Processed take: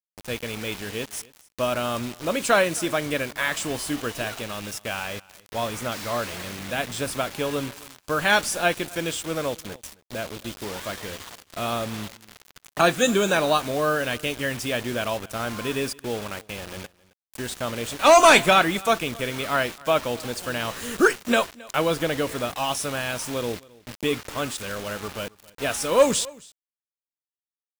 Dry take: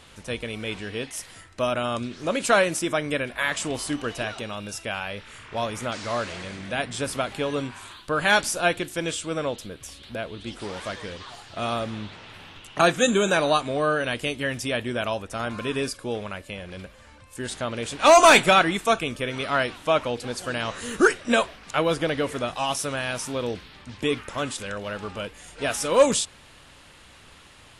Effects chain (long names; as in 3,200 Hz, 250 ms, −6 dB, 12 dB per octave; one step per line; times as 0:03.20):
bit reduction 6 bits
on a send: single-tap delay 268 ms −23 dB